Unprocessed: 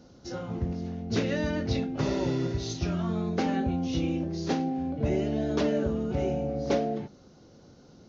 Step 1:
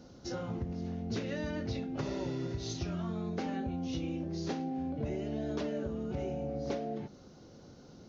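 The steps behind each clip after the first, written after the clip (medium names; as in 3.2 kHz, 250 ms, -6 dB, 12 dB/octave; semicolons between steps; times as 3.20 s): compression 4:1, threshold -34 dBFS, peak gain reduction 11 dB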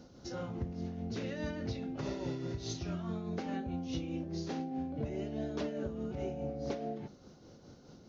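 tremolo 4.8 Hz, depth 42%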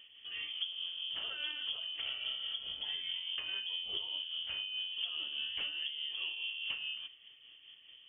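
frequency inversion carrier 3.3 kHz; trim -2 dB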